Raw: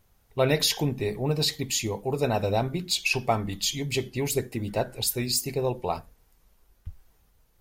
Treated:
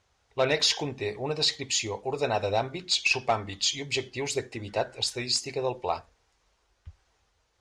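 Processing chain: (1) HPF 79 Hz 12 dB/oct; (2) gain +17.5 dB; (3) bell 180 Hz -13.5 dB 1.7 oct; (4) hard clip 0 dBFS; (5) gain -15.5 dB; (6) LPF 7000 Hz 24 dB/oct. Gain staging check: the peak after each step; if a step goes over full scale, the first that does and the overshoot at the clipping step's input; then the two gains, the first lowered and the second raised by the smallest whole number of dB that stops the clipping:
-9.5, +8.0, +8.0, 0.0, -15.5, -13.5 dBFS; step 2, 8.0 dB; step 2 +9.5 dB, step 5 -7.5 dB

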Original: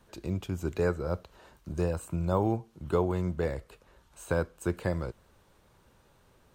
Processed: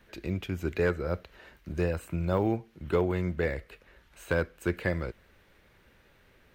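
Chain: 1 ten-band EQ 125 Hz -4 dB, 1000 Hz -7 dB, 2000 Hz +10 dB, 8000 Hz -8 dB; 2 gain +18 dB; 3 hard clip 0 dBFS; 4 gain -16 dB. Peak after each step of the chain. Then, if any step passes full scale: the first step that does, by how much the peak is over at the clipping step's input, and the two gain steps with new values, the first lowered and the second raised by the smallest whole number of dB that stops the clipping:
-14.0, +4.0, 0.0, -16.0 dBFS; step 2, 4.0 dB; step 2 +14 dB, step 4 -12 dB

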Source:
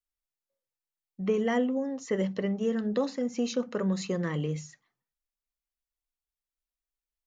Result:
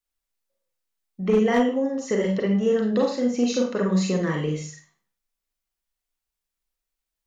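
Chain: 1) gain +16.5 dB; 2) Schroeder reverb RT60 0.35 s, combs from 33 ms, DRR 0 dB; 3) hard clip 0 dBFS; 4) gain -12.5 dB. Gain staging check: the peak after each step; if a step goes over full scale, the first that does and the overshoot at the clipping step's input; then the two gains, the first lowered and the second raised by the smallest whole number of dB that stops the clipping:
-1.0, +4.0, 0.0, -12.5 dBFS; step 2, 4.0 dB; step 1 +12.5 dB, step 4 -8.5 dB

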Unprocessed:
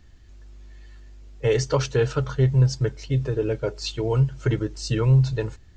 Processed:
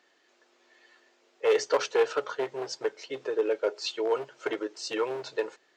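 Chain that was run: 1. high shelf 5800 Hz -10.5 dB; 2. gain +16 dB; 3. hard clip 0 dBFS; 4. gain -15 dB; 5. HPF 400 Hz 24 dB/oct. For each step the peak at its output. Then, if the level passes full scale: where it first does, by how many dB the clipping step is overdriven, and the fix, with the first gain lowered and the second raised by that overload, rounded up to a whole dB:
-9.0, +7.0, 0.0, -15.0, -12.5 dBFS; step 2, 7.0 dB; step 2 +9 dB, step 4 -8 dB

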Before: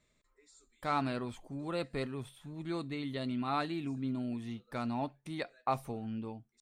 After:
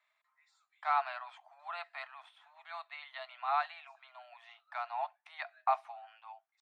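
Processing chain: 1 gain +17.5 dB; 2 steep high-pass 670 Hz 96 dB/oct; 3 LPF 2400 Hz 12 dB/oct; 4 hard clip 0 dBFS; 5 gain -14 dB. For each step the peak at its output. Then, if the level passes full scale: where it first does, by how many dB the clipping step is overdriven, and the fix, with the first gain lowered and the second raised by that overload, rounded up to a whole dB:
-1.5, -4.0, -4.0, -4.0, -18.0 dBFS; no overload

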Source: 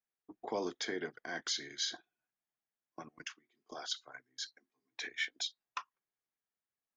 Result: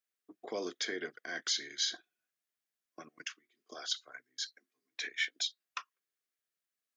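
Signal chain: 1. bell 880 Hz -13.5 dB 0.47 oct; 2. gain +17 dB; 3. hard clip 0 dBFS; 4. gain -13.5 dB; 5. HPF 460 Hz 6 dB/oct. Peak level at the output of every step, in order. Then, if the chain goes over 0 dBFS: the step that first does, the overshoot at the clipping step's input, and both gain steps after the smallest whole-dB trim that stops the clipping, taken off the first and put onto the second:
-22.5, -5.5, -5.5, -19.0, -19.0 dBFS; no overload

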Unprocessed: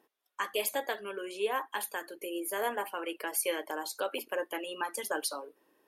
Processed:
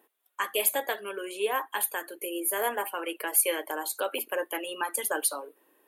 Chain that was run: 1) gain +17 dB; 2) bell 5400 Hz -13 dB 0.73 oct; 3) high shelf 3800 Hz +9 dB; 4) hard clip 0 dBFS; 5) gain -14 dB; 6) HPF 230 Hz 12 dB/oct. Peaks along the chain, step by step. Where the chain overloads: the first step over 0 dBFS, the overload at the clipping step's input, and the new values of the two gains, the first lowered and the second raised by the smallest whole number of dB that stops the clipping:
+1.0, -1.0, +7.5, 0.0, -14.0, -13.5 dBFS; step 1, 7.5 dB; step 1 +9 dB, step 5 -6 dB

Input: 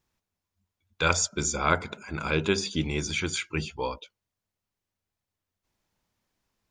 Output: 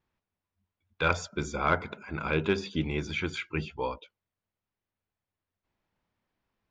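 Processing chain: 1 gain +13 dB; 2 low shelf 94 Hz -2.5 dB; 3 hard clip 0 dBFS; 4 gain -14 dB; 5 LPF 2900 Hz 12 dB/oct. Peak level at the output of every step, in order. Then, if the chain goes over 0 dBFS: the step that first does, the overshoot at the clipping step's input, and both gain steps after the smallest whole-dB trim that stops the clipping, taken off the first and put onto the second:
+6.0, +6.0, 0.0, -14.0, -13.5 dBFS; step 1, 6.0 dB; step 1 +7 dB, step 4 -8 dB

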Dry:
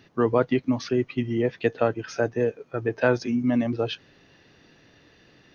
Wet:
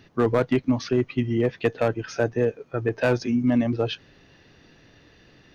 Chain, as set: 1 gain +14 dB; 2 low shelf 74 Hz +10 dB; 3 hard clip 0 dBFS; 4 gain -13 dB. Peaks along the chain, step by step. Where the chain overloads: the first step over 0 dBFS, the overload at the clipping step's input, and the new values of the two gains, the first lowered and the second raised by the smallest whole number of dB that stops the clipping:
+7.0, +7.5, 0.0, -13.0 dBFS; step 1, 7.5 dB; step 1 +6 dB, step 4 -5 dB

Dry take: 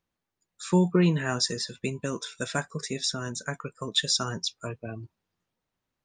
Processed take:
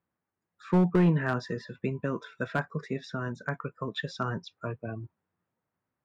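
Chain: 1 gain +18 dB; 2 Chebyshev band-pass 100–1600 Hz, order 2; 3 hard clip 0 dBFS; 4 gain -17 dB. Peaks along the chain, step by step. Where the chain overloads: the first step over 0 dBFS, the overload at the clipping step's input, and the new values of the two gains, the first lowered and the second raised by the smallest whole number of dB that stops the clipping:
+7.5, +7.0, 0.0, -17.0 dBFS; step 1, 7.0 dB; step 1 +11 dB, step 4 -10 dB

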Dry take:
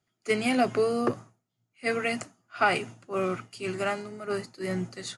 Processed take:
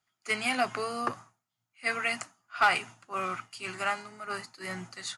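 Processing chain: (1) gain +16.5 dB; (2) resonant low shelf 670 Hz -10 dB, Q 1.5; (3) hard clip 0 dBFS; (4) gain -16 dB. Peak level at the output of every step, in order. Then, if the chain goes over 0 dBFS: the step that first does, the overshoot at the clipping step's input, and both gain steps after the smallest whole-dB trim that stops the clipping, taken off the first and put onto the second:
+5.0, +5.0, 0.0, -16.0 dBFS; step 1, 5.0 dB; step 1 +11.5 dB, step 4 -11 dB

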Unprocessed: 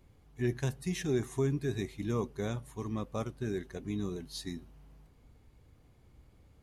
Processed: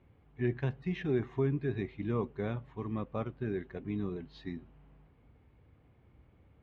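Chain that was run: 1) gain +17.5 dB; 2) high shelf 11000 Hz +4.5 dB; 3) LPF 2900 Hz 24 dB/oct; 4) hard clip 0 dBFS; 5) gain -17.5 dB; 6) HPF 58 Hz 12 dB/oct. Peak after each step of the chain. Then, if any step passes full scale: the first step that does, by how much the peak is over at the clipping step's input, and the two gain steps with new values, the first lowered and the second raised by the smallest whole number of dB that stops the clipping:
-2.0, -2.0, -2.0, -2.0, -19.5, -19.0 dBFS; no overload

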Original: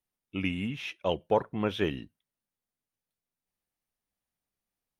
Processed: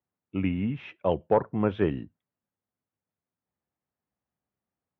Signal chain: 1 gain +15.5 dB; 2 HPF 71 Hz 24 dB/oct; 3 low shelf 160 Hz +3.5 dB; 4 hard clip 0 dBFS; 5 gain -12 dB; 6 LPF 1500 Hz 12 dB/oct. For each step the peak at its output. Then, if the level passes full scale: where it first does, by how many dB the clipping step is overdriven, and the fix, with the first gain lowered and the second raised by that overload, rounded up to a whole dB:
+3.0, +3.5, +4.0, 0.0, -12.0, -11.5 dBFS; step 1, 4.0 dB; step 1 +11.5 dB, step 5 -8 dB

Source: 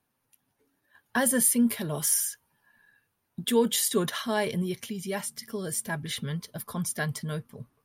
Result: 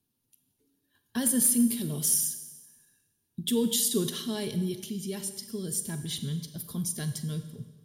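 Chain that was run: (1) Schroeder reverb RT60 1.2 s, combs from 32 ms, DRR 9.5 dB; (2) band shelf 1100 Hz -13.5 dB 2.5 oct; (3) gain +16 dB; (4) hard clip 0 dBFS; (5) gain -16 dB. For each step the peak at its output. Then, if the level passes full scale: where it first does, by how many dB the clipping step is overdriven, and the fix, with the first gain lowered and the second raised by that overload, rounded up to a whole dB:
-10.0, -10.0, +6.0, 0.0, -16.0 dBFS; step 3, 6.0 dB; step 3 +10 dB, step 5 -10 dB

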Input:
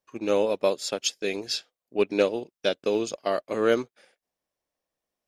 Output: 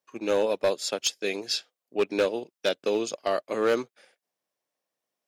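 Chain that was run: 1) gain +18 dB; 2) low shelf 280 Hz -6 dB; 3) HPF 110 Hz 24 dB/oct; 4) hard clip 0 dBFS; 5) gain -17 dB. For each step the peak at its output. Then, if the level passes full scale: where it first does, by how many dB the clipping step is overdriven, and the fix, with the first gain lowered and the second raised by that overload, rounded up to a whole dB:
+10.0, +8.5, +8.0, 0.0, -17.0 dBFS; step 1, 8.0 dB; step 1 +10 dB, step 5 -9 dB

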